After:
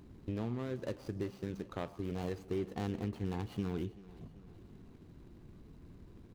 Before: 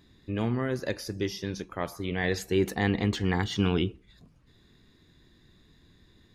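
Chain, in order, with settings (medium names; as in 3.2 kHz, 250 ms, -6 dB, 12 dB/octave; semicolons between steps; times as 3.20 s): median filter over 25 samples; compression 3:1, threshold -45 dBFS, peak gain reduction 18 dB; feedback delay 384 ms, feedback 57%, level -19.5 dB; trim +5.5 dB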